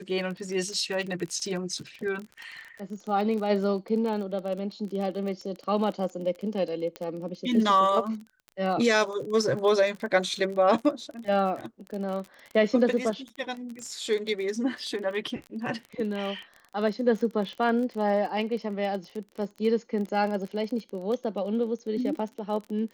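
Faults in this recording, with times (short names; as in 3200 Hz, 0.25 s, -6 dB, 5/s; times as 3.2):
crackle 28/s -33 dBFS
6.96 pop -21 dBFS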